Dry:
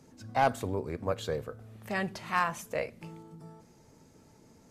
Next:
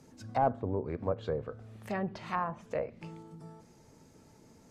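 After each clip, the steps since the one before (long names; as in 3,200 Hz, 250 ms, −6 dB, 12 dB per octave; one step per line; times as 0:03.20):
treble cut that deepens with the level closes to 1,000 Hz, closed at −27 dBFS
dynamic equaliser 2,000 Hz, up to −4 dB, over −48 dBFS, Q 0.99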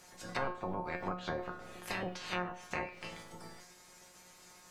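ceiling on every frequency bin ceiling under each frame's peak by 25 dB
tuned comb filter 180 Hz, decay 0.3 s, harmonics all, mix 90%
downward compressor 3 to 1, threshold −46 dBFS, peak gain reduction 9 dB
level +11.5 dB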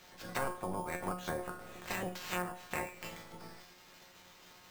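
sample-rate reduction 10,000 Hz, jitter 0%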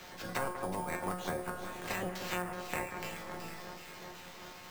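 delay that swaps between a low-pass and a high-pass 187 ms, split 1,900 Hz, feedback 78%, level −9.5 dB
multiband upward and downward compressor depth 40%
level +1 dB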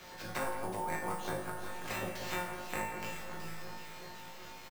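tuned comb filter 53 Hz, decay 0.51 s, harmonics all, mix 90%
single-tap delay 168 ms −14 dB
level +7.5 dB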